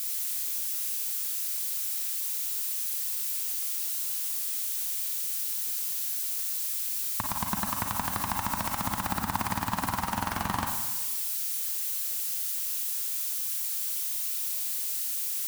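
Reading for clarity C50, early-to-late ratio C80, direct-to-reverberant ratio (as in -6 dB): 3.0 dB, 6.0 dB, 1.5 dB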